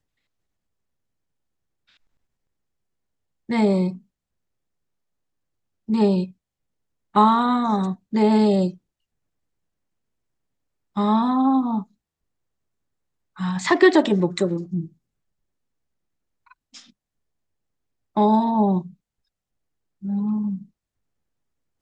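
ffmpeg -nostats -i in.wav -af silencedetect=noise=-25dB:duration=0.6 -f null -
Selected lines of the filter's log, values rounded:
silence_start: 0.00
silence_end: 3.50 | silence_duration: 3.50
silence_start: 3.90
silence_end: 5.90 | silence_duration: 2.00
silence_start: 6.24
silence_end: 7.16 | silence_duration: 0.91
silence_start: 8.70
silence_end: 10.97 | silence_duration: 2.28
silence_start: 11.80
silence_end: 13.40 | silence_duration: 1.60
silence_start: 14.82
silence_end: 18.17 | silence_duration: 3.35
silence_start: 18.80
silence_end: 20.05 | silence_duration: 1.26
silence_start: 20.55
silence_end: 21.81 | silence_duration: 1.26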